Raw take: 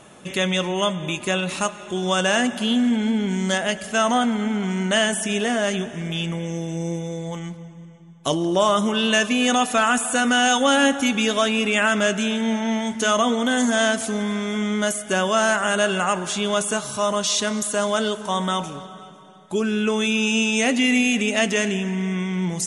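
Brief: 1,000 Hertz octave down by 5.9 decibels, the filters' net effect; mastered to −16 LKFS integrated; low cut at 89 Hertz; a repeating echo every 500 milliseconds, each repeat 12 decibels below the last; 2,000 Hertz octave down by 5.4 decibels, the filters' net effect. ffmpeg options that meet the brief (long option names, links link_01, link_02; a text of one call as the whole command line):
ffmpeg -i in.wav -af "highpass=89,equalizer=frequency=1000:width_type=o:gain=-7,equalizer=frequency=2000:width_type=o:gain=-5,aecho=1:1:500|1000|1500:0.251|0.0628|0.0157,volume=7dB" out.wav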